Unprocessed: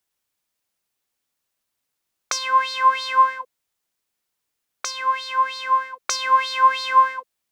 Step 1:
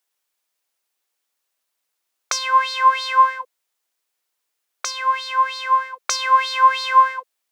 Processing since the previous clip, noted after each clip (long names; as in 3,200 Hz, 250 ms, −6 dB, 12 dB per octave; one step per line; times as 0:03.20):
high-pass filter 400 Hz 12 dB per octave
level +2 dB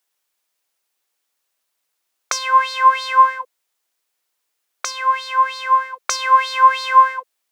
dynamic equaliser 4,000 Hz, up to −4 dB, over −35 dBFS, Q 1
level +2.5 dB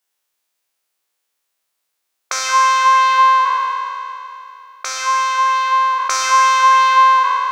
peak hold with a decay on every bin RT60 2.90 s
level −3 dB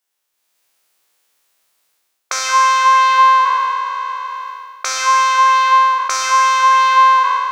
automatic gain control gain up to 11 dB
level −1 dB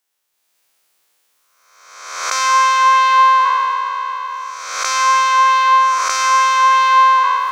peak hold with a rise ahead of every peak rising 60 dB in 1.05 s
level −1 dB